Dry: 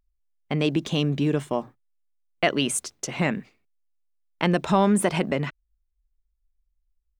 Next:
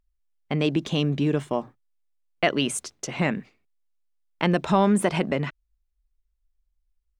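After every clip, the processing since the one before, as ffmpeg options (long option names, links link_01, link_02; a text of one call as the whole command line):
ffmpeg -i in.wav -af "highshelf=frequency=9100:gain=-7.5" out.wav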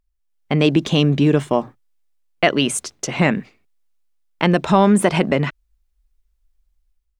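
ffmpeg -i in.wav -af "dynaudnorm=framelen=150:gausssize=5:maxgain=7.5dB,volume=1dB" out.wav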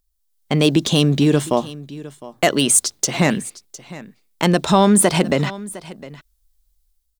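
ffmpeg -i in.wav -filter_complex "[0:a]acrossover=split=1500[link_01][link_02];[link_02]asoftclip=type=tanh:threshold=-15.5dB[link_03];[link_01][link_03]amix=inputs=2:normalize=0,aexciter=amount=3.4:drive=4.4:freq=3500,aecho=1:1:708:0.126" out.wav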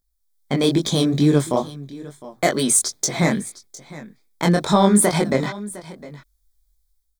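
ffmpeg -i in.wav -af "flanger=delay=19:depth=5.1:speed=2.3,asuperstop=centerf=2800:order=4:qfactor=4.4,volume=1dB" out.wav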